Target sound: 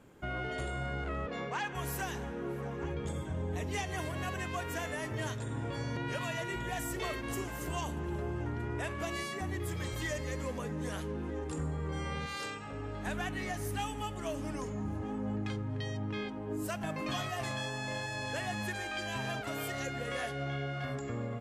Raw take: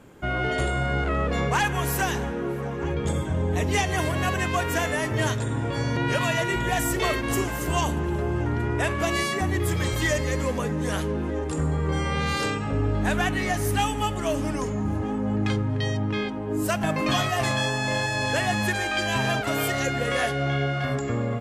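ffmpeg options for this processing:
-filter_complex "[0:a]asettb=1/sr,asplit=3[s0][s1][s2];[s0]atrim=end=11.004[s3];[s1]atrim=start=11:end=11.63,asetpts=PTS-STARTPTS,afade=t=in:d=0.004:c=qsin,afade=t=out:st=0.626:d=0.004:c=qsin,bandreject=f=610:w=12[s4];[s2]atrim=start=11.626[s5];[s3][s4]acrossfade=d=0.004:c1=hsin:c2=qsin[s6];[s6][s5]acrossfade=d=0.004:c1=qsin:c2=hsin,asettb=1/sr,asplit=3[s7][s8][s9];[s7]atrim=end=12.264[s10];[s8]atrim=start=12.26:end=13.07,asetpts=PTS-STARTPTS,afade=t=in:d=0.004:c=qsin,afade=t=out:st=0.806:d=0.004:c=qsin,lowshelf=f=450:g=-9.5[s11];[s9]atrim=start=13.066[s12];[s10][s11]acrossfade=d=0.004:c1=hsin:c2=qsin[s13];[s13][s12]acrossfade=d=0.004:c1=qsin:c2=hsin,alimiter=limit=0.112:level=0:latency=1:release=479,asettb=1/sr,asplit=3[s14][s15][s16];[s14]atrim=end=1.264[s17];[s15]atrim=start=1.26:end=1.75,asetpts=PTS-STARTPTS,afade=t=in:d=0.004:c=qsin,afade=t=out:st=0.486:d=0.004:c=qsin,highpass=190,lowpass=5500[s18];[s16]atrim=start=1.746[s19];[s17][s18]acrossfade=d=0.004:c1=hsin:c2=qsin[s20];[s20][s19]acrossfade=d=0.004:c1=qsin:c2=hsin,volume=0.376"

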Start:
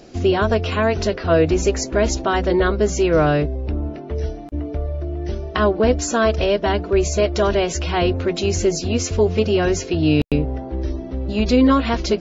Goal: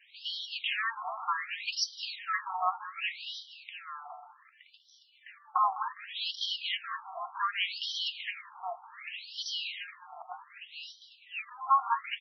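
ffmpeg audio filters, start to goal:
-filter_complex "[0:a]highshelf=f=5100:g=4.5,asplit=2[s0][s1];[s1]aecho=0:1:204|408|612|816:0.2|0.0838|0.0352|0.0148[s2];[s0][s2]amix=inputs=2:normalize=0,flanger=delay=5.6:depth=6.3:regen=90:speed=1.1:shape=sinusoidal,bandreject=f=1500:w=5.7,asplit=2[s3][s4];[s4]aecho=0:1:702:0.237[s5];[s3][s5]amix=inputs=2:normalize=0,afftfilt=real='re*between(b*sr/1024,960*pow(4300/960,0.5+0.5*sin(2*PI*0.66*pts/sr))/1.41,960*pow(4300/960,0.5+0.5*sin(2*PI*0.66*pts/sr))*1.41)':imag='im*between(b*sr/1024,960*pow(4300/960,0.5+0.5*sin(2*PI*0.66*pts/sr))/1.41,960*pow(4300/960,0.5+0.5*sin(2*PI*0.66*pts/sr))*1.41)':win_size=1024:overlap=0.75,volume=1.41"

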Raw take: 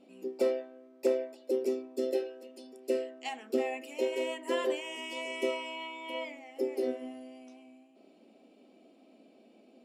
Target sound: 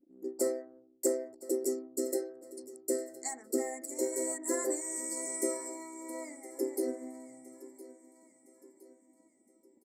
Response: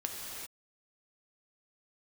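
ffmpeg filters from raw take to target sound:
-filter_complex "[0:a]anlmdn=0.00631,equalizer=f=315:t=o:w=0.33:g=12,equalizer=f=1000:t=o:w=0.33:g=-4,equalizer=f=1600:t=o:w=0.33:g=-6,equalizer=f=5000:t=o:w=0.33:g=-9,equalizer=f=8000:t=o:w=0.33:g=11,crystalizer=i=6:c=0,asuperstop=centerf=3000:order=12:qfactor=1.3,asplit=2[s0][s1];[s1]aecho=0:1:1014|2028|3042|4056:0.133|0.06|0.027|0.0122[s2];[s0][s2]amix=inputs=2:normalize=0,volume=0.531"

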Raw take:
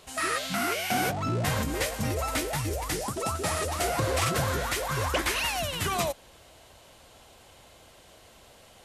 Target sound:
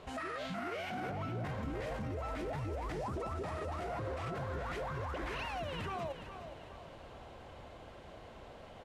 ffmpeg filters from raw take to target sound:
-filter_complex "[0:a]lowpass=f=1500:p=1,aemphasis=mode=reproduction:type=cd,alimiter=level_in=4.22:limit=0.0631:level=0:latency=1:release=56,volume=0.237,asplit=2[s0][s1];[s1]aecho=0:1:415|830|1245|1660:0.299|0.125|0.0527|0.0221[s2];[s0][s2]amix=inputs=2:normalize=0,volume=1.58"

